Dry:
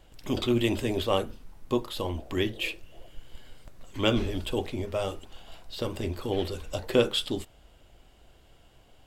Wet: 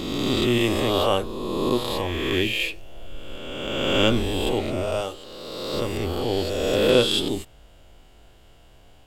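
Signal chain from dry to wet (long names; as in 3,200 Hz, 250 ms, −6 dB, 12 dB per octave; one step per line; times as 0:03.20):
peak hold with a rise ahead of every peak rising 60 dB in 1.96 s
0:05.01–0:05.74: low-shelf EQ 190 Hz −11.5 dB
level +1.5 dB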